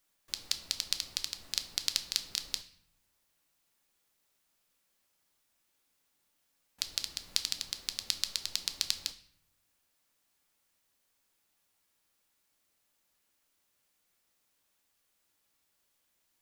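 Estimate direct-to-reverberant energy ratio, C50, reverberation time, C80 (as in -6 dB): 7.5 dB, 14.0 dB, 0.65 s, 17.0 dB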